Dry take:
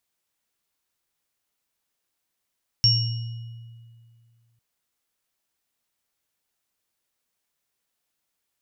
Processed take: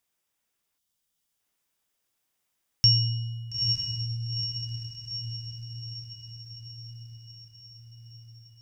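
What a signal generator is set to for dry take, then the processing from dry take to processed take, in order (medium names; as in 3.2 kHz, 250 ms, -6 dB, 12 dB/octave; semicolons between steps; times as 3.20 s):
sine partials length 1.75 s, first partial 116 Hz, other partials 2.91/5.51 kHz, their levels -14/5.5 dB, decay 2.26 s, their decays 1.68/0.72 s, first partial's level -18.5 dB
spectral selection erased 0.78–1.40 s, 270–2800 Hz; band-stop 4.2 kHz, Q 12; on a send: echo that smears into a reverb 916 ms, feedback 58%, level -4 dB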